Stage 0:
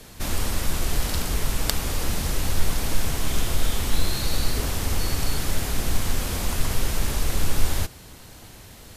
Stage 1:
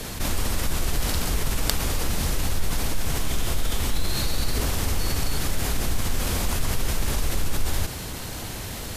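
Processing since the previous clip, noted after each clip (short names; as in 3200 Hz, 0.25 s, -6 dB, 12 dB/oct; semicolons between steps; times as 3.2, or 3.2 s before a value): fast leveller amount 50%; gain -6 dB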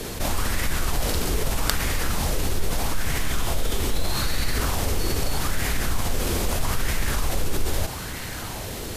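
LFO bell 0.79 Hz 370–2000 Hz +8 dB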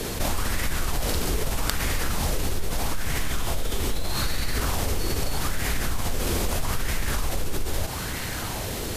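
compressor, threshold -22 dBFS, peak gain reduction 7 dB; gain +2 dB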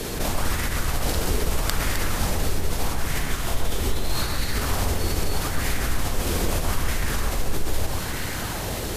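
echo with dull and thin repeats by turns 0.13 s, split 2100 Hz, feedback 57%, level -3 dB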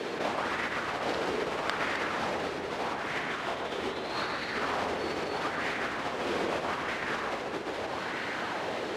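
BPF 330–2700 Hz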